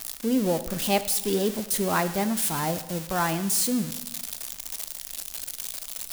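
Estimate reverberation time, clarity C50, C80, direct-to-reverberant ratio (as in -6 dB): 1.1 s, 13.0 dB, 14.5 dB, 10.5 dB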